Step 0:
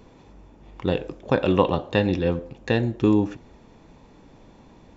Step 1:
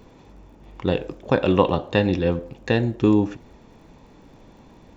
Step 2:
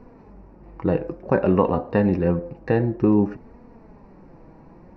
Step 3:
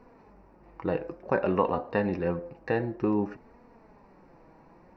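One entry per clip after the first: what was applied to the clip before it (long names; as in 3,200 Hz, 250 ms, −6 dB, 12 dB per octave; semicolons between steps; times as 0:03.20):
surface crackle 48 per second −53 dBFS; level +1.5 dB
in parallel at −2 dB: brickwall limiter −10.5 dBFS, peak gain reduction 8.5 dB; on the sum: moving average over 13 samples; flanger 0.55 Hz, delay 4 ms, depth 2.4 ms, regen +50%; level +1 dB
low-shelf EQ 420 Hz −11 dB; level −1.5 dB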